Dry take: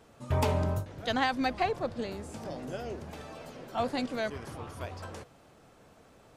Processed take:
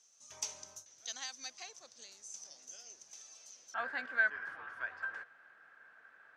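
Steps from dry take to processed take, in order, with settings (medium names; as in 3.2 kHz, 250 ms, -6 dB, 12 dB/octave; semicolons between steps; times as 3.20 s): band-pass filter 6.1 kHz, Q 14, from 3.74 s 1.6 kHz; trim +16 dB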